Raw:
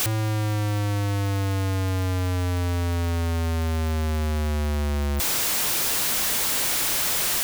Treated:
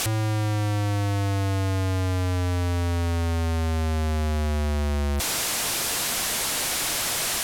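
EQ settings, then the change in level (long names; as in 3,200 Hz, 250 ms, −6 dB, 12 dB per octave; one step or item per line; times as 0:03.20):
low-pass filter 12,000 Hz 12 dB per octave
parametric band 690 Hz +3.5 dB 0.21 octaves
0.0 dB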